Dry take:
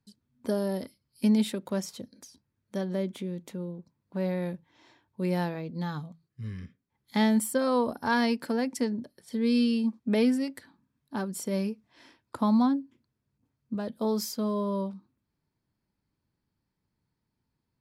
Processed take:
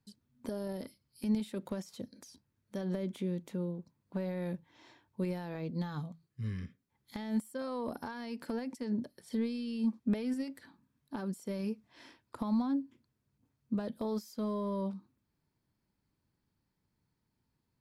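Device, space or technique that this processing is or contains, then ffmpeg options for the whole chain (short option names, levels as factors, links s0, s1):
de-esser from a sidechain: -filter_complex "[0:a]asplit=2[s0][s1];[s1]highpass=f=6500:p=1,apad=whole_len=785273[s2];[s0][s2]sidechaincompress=threshold=0.00282:ratio=16:attack=1.6:release=72"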